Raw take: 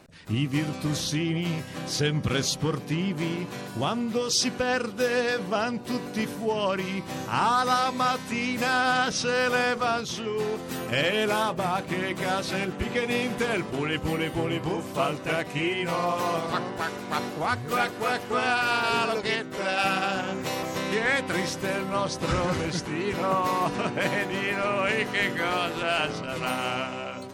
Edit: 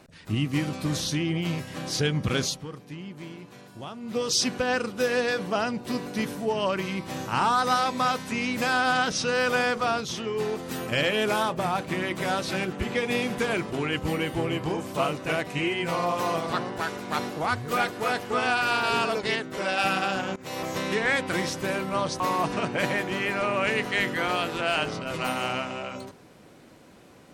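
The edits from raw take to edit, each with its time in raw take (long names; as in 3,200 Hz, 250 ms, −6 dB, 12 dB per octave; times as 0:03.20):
0:02.43–0:04.21: duck −11.5 dB, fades 0.20 s
0:20.36–0:20.65: fade in, from −21.5 dB
0:22.20–0:23.42: remove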